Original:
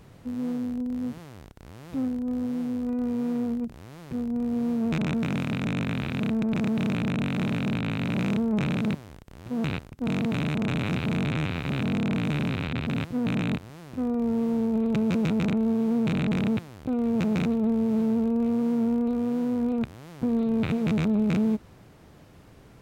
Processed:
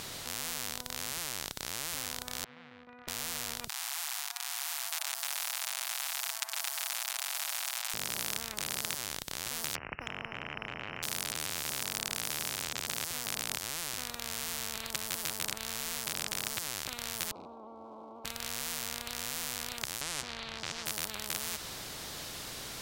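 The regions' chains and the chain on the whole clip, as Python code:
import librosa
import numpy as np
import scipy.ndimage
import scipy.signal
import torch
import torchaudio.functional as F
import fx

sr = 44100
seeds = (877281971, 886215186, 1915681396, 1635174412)

y = fx.chain(x, sr, fx.gate_hold(open_db=-23.0, close_db=-25.0, hold_ms=71.0, range_db=-21, attack_ms=1.4, release_ms=100.0),
    fx.lowpass(hz=2100.0, slope=24),
    fx.differentiator(), at=(2.44, 3.08))
y = fx.chain(y, sr, fx.steep_highpass(hz=750.0, slope=72),
    fx.comb(ms=7.2, depth=0.91), at=(3.68, 7.94))
y = fx.chain(y, sr, fx.resample_bad(factor=8, down='none', up='filtered'),
    fx.band_squash(depth_pct=100), at=(9.75, 11.03))
y = fx.chain(y, sr, fx.clip_hard(threshold_db=-23.0),
    fx.ellip_bandpass(low_hz=280.0, high_hz=890.0, order=3, stop_db=40), at=(17.31, 18.25))
y = fx.chain(y, sr, fx.lowpass(hz=4000.0, slope=12),
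    fx.pre_swell(db_per_s=27.0), at=(20.01, 20.86))
y = fx.curve_eq(y, sr, hz=(150.0, 310.0, 2600.0, 3800.0), db=(0, -13, 0, 8))
y = fx.spectral_comp(y, sr, ratio=10.0)
y = y * librosa.db_to_amplitude(1.0)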